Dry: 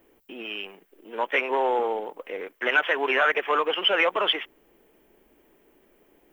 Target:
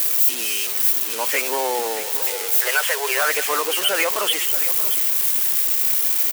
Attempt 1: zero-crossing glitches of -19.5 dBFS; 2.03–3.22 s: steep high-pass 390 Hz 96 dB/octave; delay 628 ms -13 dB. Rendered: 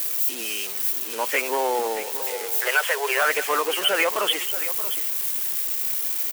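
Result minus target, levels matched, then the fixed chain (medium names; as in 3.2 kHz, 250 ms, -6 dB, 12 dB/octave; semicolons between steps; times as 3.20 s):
zero-crossing glitches: distortion -6 dB
zero-crossing glitches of -13 dBFS; 2.03–3.22 s: steep high-pass 390 Hz 96 dB/octave; delay 628 ms -13 dB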